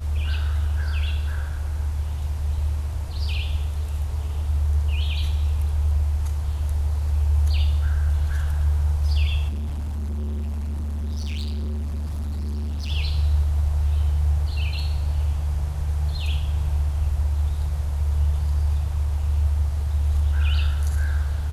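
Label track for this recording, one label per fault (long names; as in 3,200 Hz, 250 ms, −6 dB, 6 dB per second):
9.480000	12.910000	clipping −25 dBFS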